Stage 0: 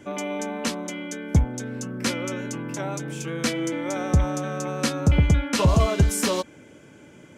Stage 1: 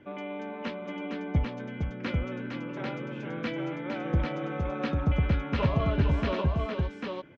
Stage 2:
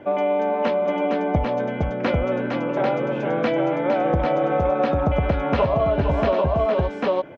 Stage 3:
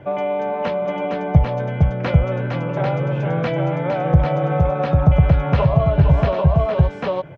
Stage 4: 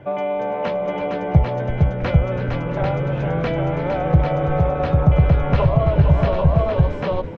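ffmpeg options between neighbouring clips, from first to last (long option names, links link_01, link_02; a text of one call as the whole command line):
ffmpeg -i in.wav -af "lowpass=frequency=3200:width=0.5412,lowpass=frequency=3200:width=1.3066,aecho=1:1:458|794:0.501|0.668,volume=-7.5dB" out.wav
ffmpeg -i in.wav -af "equalizer=frequency=670:width=1.1:gain=14.5,acompressor=threshold=-23dB:ratio=10,volume=7dB" out.wav
ffmpeg -i in.wav -af "lowshelf=frequency=190:width_type=q:width=3:gain=7.5" out.wav
ffmpeg -i in.wav -filter_complex "[0:a]asplit=8[link_01][link_02][link_03][link_04][link_05][link_06][link_07][link_08];[link_02]adelay=335,afreqshift=-78,volume=-12dB[link_09];[link_03]adelay=670,afreqshift=-156,volume=-16dB[link_10];[link_04]adelay=1005,afreqshift=-234,volume=-20dB[link_11];[link_05]adelay=1340,afreqshift=-312,volume=-24dB[link_12];[link_06]adelay=1675,afreqshift=-390,volume=-28.1dB[link_13];[link_07]adelay=2010,afreqshift=-468,volume=-32.1dB[link_14];[link_08]adelay=2345,afreqshift=-546,volume=-36.1dB[link_15];[link_01][link_09][link_10][link_11][link_12][link_13][link_14][link_15]amix=inputs=8:normalize=0,volume=-1dB" out.wav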